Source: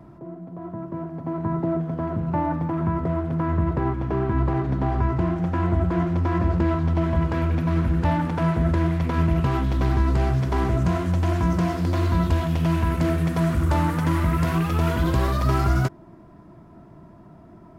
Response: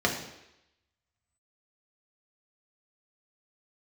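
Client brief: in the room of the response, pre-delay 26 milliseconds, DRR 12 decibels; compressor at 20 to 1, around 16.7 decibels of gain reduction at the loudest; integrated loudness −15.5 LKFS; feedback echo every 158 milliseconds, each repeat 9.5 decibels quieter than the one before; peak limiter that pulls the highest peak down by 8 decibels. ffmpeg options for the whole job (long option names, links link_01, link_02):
-filter_complex "[0:a]acompressor=threshold=-33dB:ratio=20,alimiter=level_in=8.5dB:limit=-24dB:level=0:latency=1,volume=-8.5dB,aecho=1:1:158|316|474|632:0.335|0.111|0.0365|0.012,asplit=2[link_01][link_02];[1:a]atrim=start_sample=2205,adelay=26[link_03];[link_02][link_03]afir=irnorm=-1:irlink=0,volume=-24.5dB[link_04];[link_01][link_04]amix=inputs=2:normalize=0,volume=25dB"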